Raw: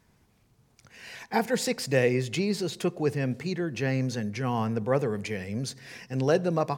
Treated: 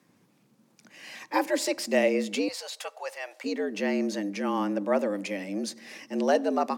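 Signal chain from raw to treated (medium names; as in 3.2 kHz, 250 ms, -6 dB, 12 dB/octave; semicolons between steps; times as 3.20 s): 2.48–3.44 s: high-pass 580 Hz 24 dB/octave; frequency shift +95 Hz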